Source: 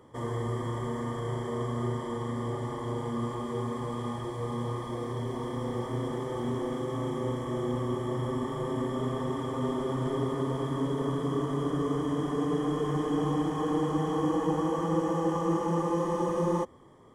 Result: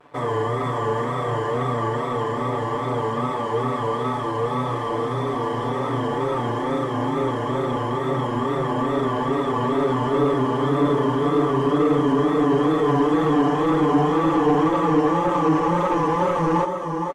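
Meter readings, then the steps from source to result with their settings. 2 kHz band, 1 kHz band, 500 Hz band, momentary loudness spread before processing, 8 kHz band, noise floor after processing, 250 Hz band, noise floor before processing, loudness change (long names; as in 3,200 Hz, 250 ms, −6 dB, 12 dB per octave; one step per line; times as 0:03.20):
+13.5 dB, +12.5 dB, +10.0 dB, 6 LU, can't be measured, −26 dBFS, +8.5 dB, −37 dBFS, +9.5 dB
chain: tape wow and flutter 96 cents
dead-zone distortion −55.5 dBFS
single-tap delay 464 ms −7.5 dB
mid-hump overdrive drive 17 dB, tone 1,500 Hz, clips at −16 dBFS
comb filter 6.9 ms
level +4.5 dB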